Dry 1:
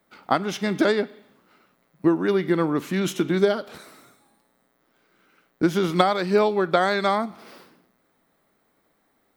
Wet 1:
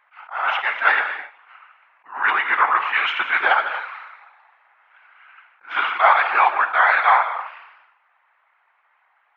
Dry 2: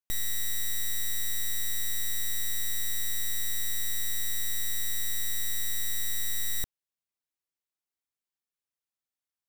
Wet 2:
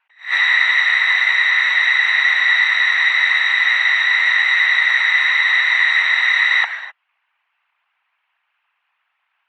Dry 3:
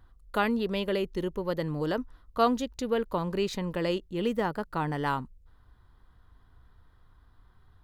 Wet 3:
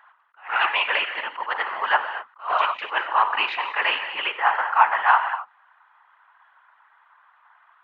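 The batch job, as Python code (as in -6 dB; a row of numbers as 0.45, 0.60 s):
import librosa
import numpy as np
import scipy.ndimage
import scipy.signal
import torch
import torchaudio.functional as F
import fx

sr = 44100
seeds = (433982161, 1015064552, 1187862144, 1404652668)

y = scipy.signal.sosfilt(scipy.signal.ellip(3, 1.0, 70, [870.0, 2700.0], 'bandpass', fs=sr, output='sos'), x)
y = fx.rev_gated(y, sr, seeds[0], gate_ms=280, shape='flat', drr_db=7.5)
y = fx.rider(y, sr, range_db=3, speed_s=2.0)
y = fx.whisperise(y, sr, seeds[1])
y = fx.attack_slew(y, sr, db_per_s=210.0)
y = y * 10.0 ** (-2 / 20.0) / np.max(np.abs(y))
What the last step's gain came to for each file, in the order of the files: +13.5, +32.0, +18.0 dB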